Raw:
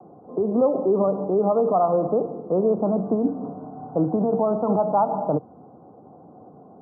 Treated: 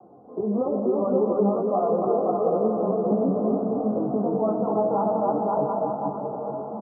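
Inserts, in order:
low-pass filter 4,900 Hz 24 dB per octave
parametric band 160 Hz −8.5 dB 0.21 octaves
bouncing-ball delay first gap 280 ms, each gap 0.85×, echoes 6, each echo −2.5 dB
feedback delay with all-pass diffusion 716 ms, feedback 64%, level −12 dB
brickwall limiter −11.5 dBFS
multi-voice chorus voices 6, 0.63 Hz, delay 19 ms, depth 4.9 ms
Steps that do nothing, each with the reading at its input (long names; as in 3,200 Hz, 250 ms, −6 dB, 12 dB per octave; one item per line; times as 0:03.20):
low-pass filter 4,900 Hz: nothing at its input above 1,400 Hz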